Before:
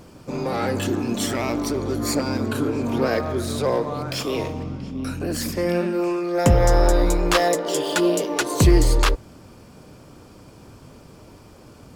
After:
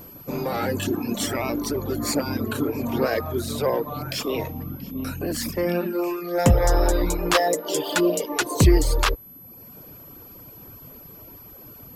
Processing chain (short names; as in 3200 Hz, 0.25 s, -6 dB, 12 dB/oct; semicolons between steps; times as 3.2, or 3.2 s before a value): reverb removal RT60 0.85 s; whine 12000 Hz -43 dBFS